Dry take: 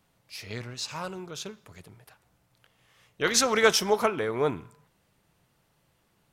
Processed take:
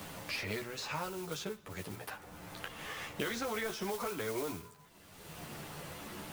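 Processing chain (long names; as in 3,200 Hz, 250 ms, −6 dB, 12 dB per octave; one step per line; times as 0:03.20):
de-essing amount 75%
multi-voice chorus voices 6, 0.42 Hz, delay 12 ms, depth 2.1 ms
noise that follows the level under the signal 12 dB
brickwall limiter −22.5 dBFS, peak gain reduction 8 dB
multiband upward and downward compressor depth 100%
level −2.5 dB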